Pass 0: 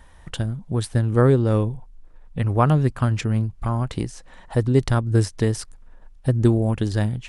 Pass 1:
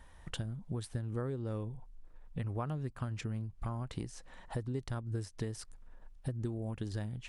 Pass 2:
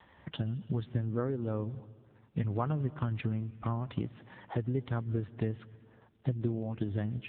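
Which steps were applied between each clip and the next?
downward compressor 6 to 1, threshold −27 dBFS, peak gain reduction 15 dB; level −7.5 dB
on a send at −18.5 dB: convolution reverb RT60 1.7 s, pre-delay 120 ms; on the sum: level +6.5 dB; AMR narrowband 6.7 kbit/s 8,000 Hz

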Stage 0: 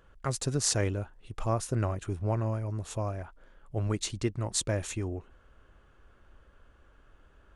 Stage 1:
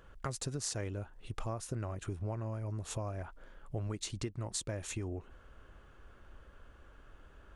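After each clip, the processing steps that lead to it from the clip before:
downward compressor 6 to 1, threshold −38 dBFS, peak gain reduction 14 dB
level +2.5 dB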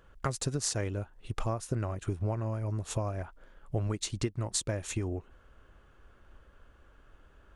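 expander for the loud parts 1.5 to 1, over −52 dBFS
level +7.5 dB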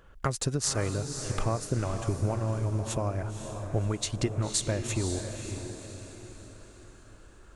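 feedback delay with all-pass diffusion 534 ms, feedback 46%, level −7 dB
level +3 dB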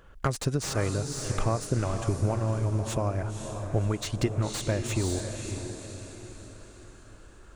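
slew-rate limiting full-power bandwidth 110 Hz
level +2 dB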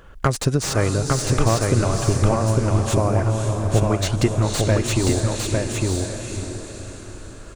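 single-tap delay 854 ms −3 dB
level +8 dB

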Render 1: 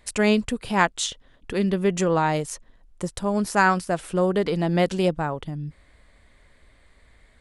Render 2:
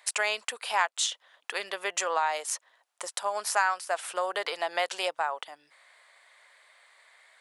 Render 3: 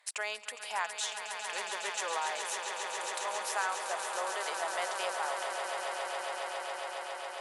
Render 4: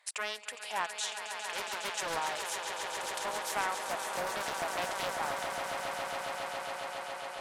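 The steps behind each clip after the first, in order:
high-pass filter 700 Hz 24 dB per octave; downward compressor 2.5 to 1, threshold −29 dBFS, peak gain reduction 10.5 dB; level +3.5 dB
echo that builds up and dies away 137 ms, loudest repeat 8, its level −9.5 dB; harmonic generator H 5 −33 dB, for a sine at −9 dBFS; level −9 dB
highs frequency-modulated by the lows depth 0.64 ms

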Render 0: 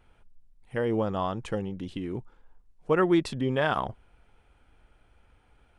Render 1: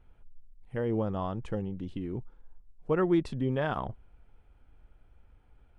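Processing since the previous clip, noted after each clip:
spectral tilt −2 dB per octave
level −6 dB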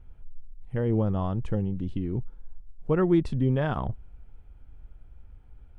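low-shelf EQ 210 Hz +11 dB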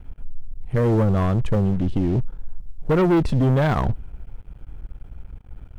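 leveller curve on the samples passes 3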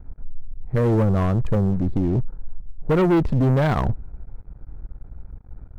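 adaptive Wiener filter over 15 samples

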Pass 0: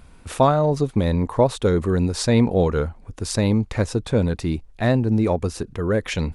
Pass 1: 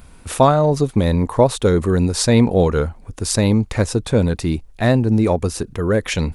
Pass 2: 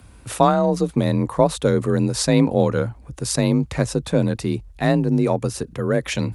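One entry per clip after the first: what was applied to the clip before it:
high-shelf EQ 8,600 Hz +9.5 dB; level +3.5 dB
frequency shifter +34 Hz; level −3 dB

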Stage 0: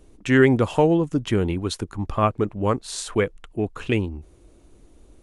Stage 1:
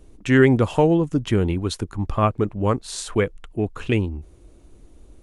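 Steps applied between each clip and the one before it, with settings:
low-shelf EQ 160 Hz +4.5 dB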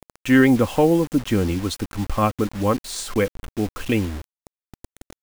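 comb filter 3.8 ms, depth 44%
bit reduction 6 bits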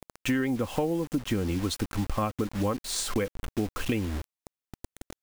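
downward compressor 10 to 1, threshold −24 dBFS, peak gain reduction 14 dB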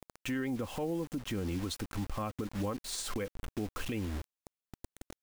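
brickwall limiter −21.5 dBFS, peak gain reduction 7.5 dB
level −5 dB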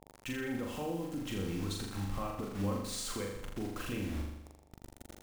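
flutter between parallel walls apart 7 metres, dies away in 0.87 s
hum with harmonics 50 Hz, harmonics 18, −65 dBFS −1 dB per octave
level −4 dB

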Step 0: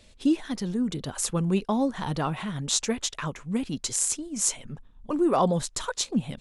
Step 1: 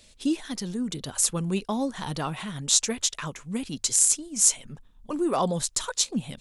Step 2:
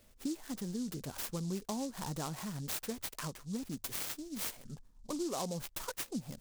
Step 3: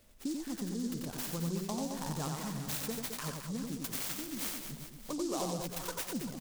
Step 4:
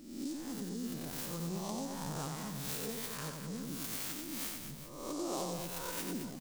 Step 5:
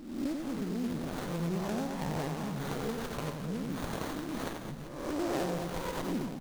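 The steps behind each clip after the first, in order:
high-shelf EQ 3,400 Hz +10.5 dB; mains-hum notches 50/100 Hz; level −3 dB
high-shelf EQ 4,000 Hz −11 dB; downward compressor 4 to 1, threshold −30 dBFS, peak gain reduction 8.5 dB; short delay modulated by noise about 5,800 Hz, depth 0.1 ms; level −5 dB
reverse bouncing-ball delay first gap 90 ms, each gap 1.4×, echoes 5
peak hold with a rise ahead of every peak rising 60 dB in 0.88 s; level −5 dB
windowed peak hold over 17 samples; level +6.5 dB

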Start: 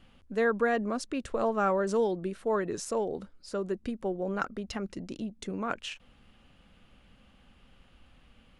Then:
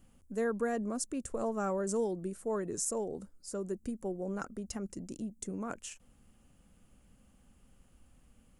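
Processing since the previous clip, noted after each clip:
drawn EQ curve 240 Hz 0 dB, 3,800 Hz −11 dB, 7,400 Hz +11 dB
level −3 dB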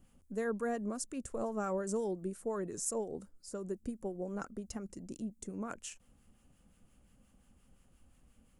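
two-band tremolo in antiphase 5.7 Hz, depth 50%, crossover 1,000 Hz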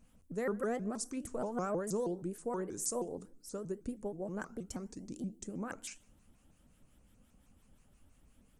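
feedback delay network reverb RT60 0.51 s, low-frequency decay 1.45×, high-frequency decay 0.95×, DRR 14.5 dB
pitch modulation by a square or saw wave saw up 6.3 Hz, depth 250 cents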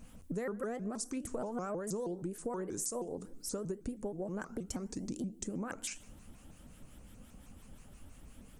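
downward compressor 6 to 1, threshold −47 dBFS, peak gain reduction 15.5 dB
level +11 dB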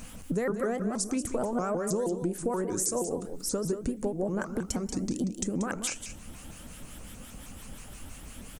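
single-tap delay 185 ms −10 dB
one half of a high-frequency compander encoder only
level +8 dB

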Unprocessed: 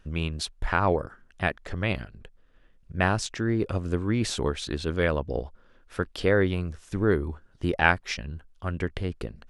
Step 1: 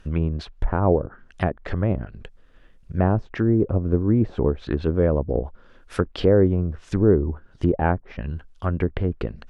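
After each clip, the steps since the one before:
treble cut that deepens with the level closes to 610 Hz, closed at −24 dBFS
level +7 dB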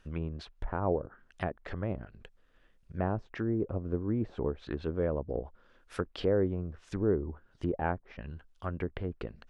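low-shelf EQ 320 Hz −5.5 dB
level −8.5 dB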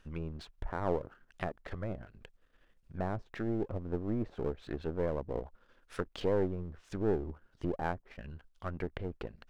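gain on one half-wave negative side −7 dB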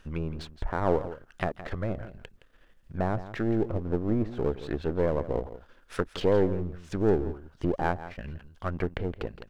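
single-tap delay 167 ms −14 dB
level +7 dB

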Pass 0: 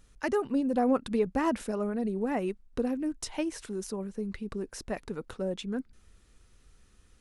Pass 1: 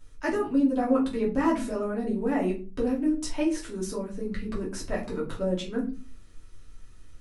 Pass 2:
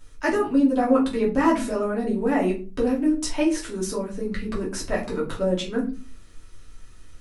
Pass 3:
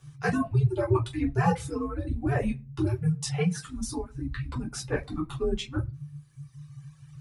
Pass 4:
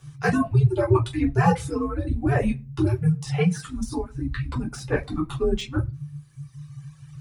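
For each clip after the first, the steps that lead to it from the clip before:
rectangular room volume 160 cubic metres, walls furnished, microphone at 2.8 metres; in parallel at −2.5 dB: speech leveller within 4 dB 0.5 s; on the sum: level −8.5 dB
low-shelf EQ 380 Hz −4 dB; level +6.5 dB
reverb reduction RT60 2 s; frequency shifter −150 Hz; level −3.5 dB
de-essing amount 90%; level +5 dB

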